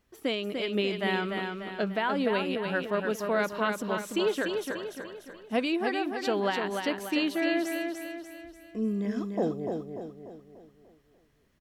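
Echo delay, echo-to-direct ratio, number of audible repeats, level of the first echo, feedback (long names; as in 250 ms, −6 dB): 294 ms, −4.0 dB, 5, −5.0 dB, 47%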